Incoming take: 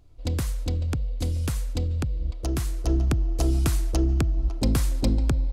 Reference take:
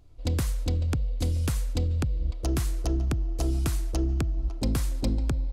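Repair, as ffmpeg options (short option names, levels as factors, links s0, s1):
-af "asetnsamples=n=441:p=0,asendcmd='2.87 volume volume -4dB',volume=1"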